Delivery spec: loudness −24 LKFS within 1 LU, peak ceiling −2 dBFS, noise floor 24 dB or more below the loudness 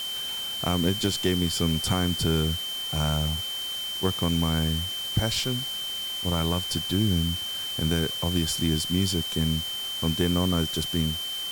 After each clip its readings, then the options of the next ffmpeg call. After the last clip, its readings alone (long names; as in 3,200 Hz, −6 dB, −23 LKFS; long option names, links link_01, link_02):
interfering tone 3,100 Hz; level of the tone −30 dBFS; background noise floor −32 dBFS; target noise floor −50 dBFS; integrated loudness −26.0 LKFS; sample peak −10.5 dBFS; target loudness −24.0 LKFS
→ -af "bandreject=frequency=3100:width=30"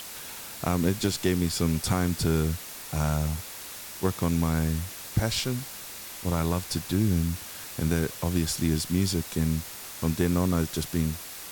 interfering tone none found; background noise floor −41 dBFS; target noise floor −52 dBFS
→ -af "afftdn=noise_reduction=11:noise_floor=-41"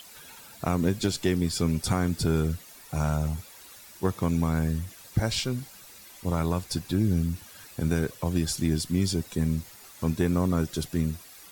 background noise floor −49 dBFS; target noise floor −52 dBFS
→ -af "afftdn=noise_reduction=6:noise_floor=-49"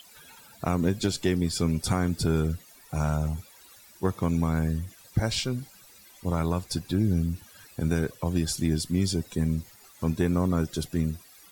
background noise floor −53 dBFS; integrated loudness −28.0 LKFS; sample peak −11.5 dBFS; target loudness −24.0 LKFS
→ -af "volume=4dB"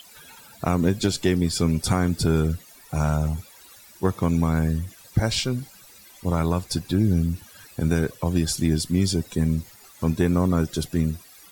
integrated loudness −24.0 LKFS; sample peak −7.5 dBFS; background noise floor −49 dBFS